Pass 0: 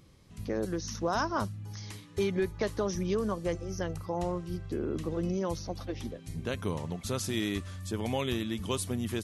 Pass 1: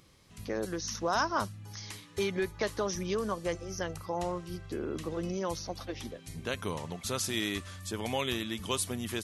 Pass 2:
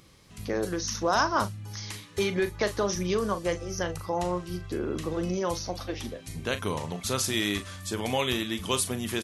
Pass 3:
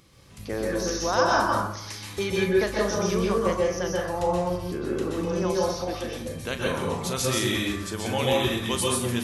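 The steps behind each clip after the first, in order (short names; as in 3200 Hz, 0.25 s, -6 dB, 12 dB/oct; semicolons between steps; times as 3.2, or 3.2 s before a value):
low shelf 500 Hz -9 dB; gain +3.5 dB
doubler 39 ms -11 dB; gain +4.5 dB
plate-style reverb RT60 0.72 s, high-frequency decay 0.5×, pre-delay 0.115 s, DRR -3 dB; gain -1.5 dB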